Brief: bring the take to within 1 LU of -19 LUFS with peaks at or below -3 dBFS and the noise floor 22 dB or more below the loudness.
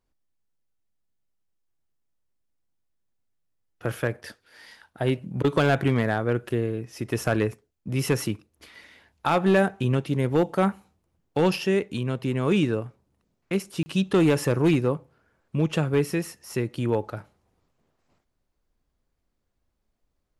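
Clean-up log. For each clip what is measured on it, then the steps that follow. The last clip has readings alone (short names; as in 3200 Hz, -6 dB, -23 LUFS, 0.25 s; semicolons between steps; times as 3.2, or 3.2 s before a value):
clipped 0.3%; flat tops at -13.5 dBFS; dropouts 1; longest dropout 30 ms; loudness -25.5 LUFS; peak -13.5 dBFS; loudness target -19.0 LUFS
-> clip repair -13.5 dBFS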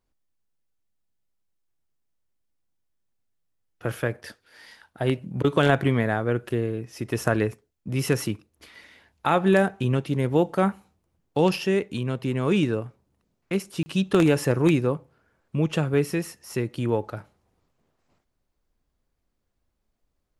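clipped 0.0%; dropouts 1; longest dropout 30 ms
-> interpolate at 13.83, 30 ms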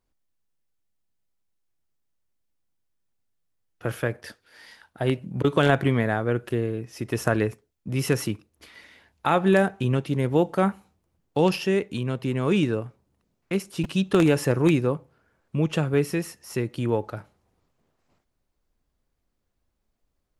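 dropouts 0; loudness -25.0 LUFS; peak -4.5 dBFS; loudness target -19.0 LUFS
-> gain +6 dB; limiter -3 dBFS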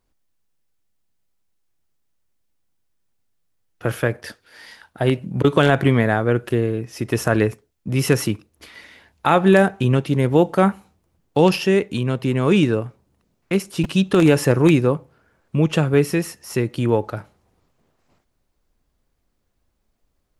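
loudness -19.0 LUFS; peak -3.0 dBFS; noise floor -70 dBFS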